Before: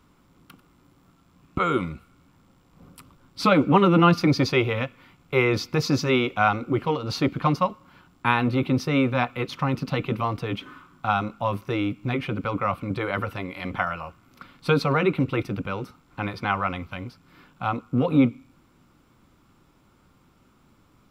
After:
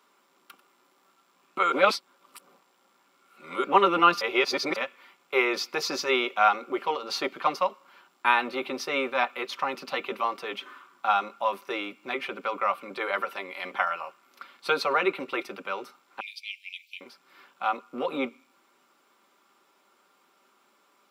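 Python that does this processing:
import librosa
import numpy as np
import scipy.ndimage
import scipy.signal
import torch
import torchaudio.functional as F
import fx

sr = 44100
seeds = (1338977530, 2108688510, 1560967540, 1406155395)

y = fx.steep_highpass(x, sr, hz=2300.0, slope=96, at=(16.2, 17.01))
y = fx.edit(y, sr, fx.reverse_span(start_s=1.72, length_s=1.92),
    fx.reverse_span(start_s=4.21, length_s=0.55), tone=tone)
y = scipy.signal.sosfilt(scipy.signal.bessel(4, 520.0, 'highpass', norm='mag', fs=sr, output='sos'), y)
y = y + 0.4 * np.pad(y, (int(5.1 * sr / 1000.0), 0))[:len(y)]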